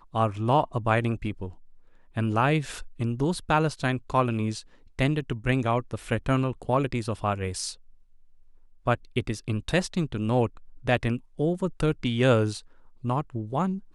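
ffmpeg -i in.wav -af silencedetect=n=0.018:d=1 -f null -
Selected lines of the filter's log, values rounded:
silence_start: 7.73
silence_end: 8.87 | silence_duration: 1.14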